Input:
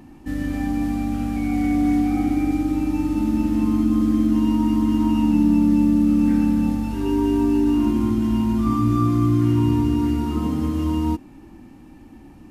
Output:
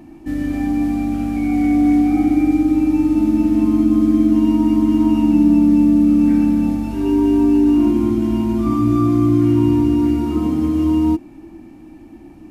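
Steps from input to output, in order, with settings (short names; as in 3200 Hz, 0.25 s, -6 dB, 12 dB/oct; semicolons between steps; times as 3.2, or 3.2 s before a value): small resonant body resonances 330/660/2300 Hz, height 10 dB, ringing for 45 ms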